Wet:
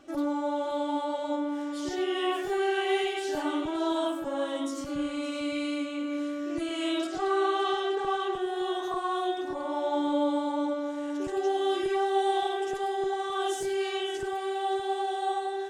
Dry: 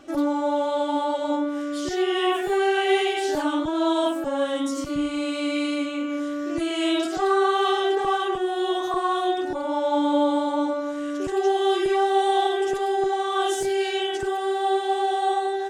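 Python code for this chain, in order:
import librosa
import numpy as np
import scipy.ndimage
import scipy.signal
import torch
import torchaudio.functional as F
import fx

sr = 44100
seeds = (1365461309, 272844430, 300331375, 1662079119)

y = fx.lowpass(x, sr, hz=8500.0, slope=12, at=(7.07, 8.33))
y = fx.echo_multitap(y, sr, ms=(103, 566), db=(-16.5, -13.0))
y = F.gain(torch.from_numpy(y), -6.5).numpy()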